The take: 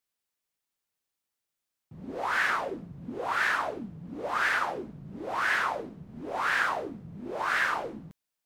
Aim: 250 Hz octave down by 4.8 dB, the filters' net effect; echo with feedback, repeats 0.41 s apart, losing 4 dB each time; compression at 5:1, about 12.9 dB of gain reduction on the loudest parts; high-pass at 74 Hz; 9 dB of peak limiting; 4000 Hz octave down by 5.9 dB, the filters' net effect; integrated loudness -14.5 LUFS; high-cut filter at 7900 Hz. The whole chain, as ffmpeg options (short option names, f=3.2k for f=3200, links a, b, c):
-af "highpass=74,lowpass=7.9k,equalizer=f=250:t=o:g=-6.5,equalizer=f=4k:t=o:g=-8,acompressor=threshold=-39dB:ratio=5,alimiter=level_in=12.5dB:limit=-24dB:level=0:latency=1,volume=-12.5dB,aecho=1:1:410|820|1230|1640|2050|2460|2870|3280|3690:0.631|0.398|0.25|0.158|0.0994|0.0626|0.0394|0.0249|0.0157,volume=29dB"